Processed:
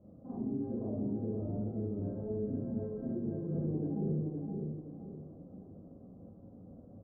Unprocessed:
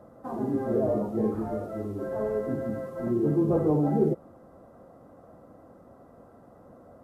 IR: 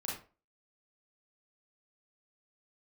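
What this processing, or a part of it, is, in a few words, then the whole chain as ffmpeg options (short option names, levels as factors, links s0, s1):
television next door: -filter_complex "[0:a]asettb=1/sr,asplit=3[s0][s1][s2];[s0]atrim=end=2.764[s3];[s1]atrim=start=2.76:end=3.48,asetpts=PTS-STARTPTS,afade=t=in:d=0.004:c=qsin,afade=t=out:st=0.716:d=0.004:c=qsin,equalizer=f=250:t=o:w=0.67:g=-11,equalizer=f=630:t=o:w=0.67:g=6,equalizer=f=1600:t=o:w=0.67:g=7[s4];[s2]atrim=start=3.476[s5];[s3][s4]acrossfade=d=0.004:c1=hsin:c2=qsin[s6];[s6][s5]acrossfade=d=0.004:c1=qsin:c2=hsin,acompressor=threshold=0.0224:ratio=3,lowpass=280[s7];[1:a]atrim=start_sample=2205[s8];[s7][s8]afir=irnorm=-1:irlink=0,aecho=1:1:518|1036|1554|2072|2590:0.668|0.247|0.0915|0.0339|0.0125"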